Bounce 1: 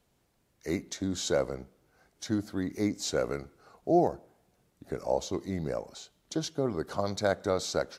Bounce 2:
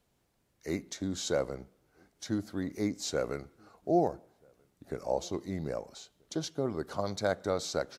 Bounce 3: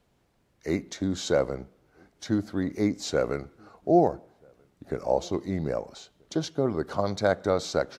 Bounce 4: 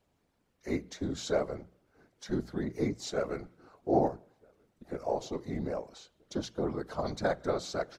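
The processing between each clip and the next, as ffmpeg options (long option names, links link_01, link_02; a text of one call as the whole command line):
ffmpeg -i in.wav -filter_complex "[0:a]asplit=2[link_01][link_02];[link_02]adelay=1283,volume=-30dB,highshelf=frequency=4000:gain=-28.9[link_03];[link_01][link_03]amix=inputs=2:normalize=0,volume=-2.5dB" out.wav
ffmpeg -i in.wav -af "highshelf=frequency=5800:gain=-10.5,volume=6.5dB" out.wav
ffmpeg -i in.wav -af "afftfilt=real='hypot(re,im)*cos(2*PI*random(0))':imag='hypot(re,im)*sin(2*PI*random(1))':win_size=512:overlap=0.75,bandreject=frequency=60:width_type=h:width=6,bandreject=frequency=120:width_type=h:width=6,bandreject=frequency=180:width_type=h:width=6" out.wav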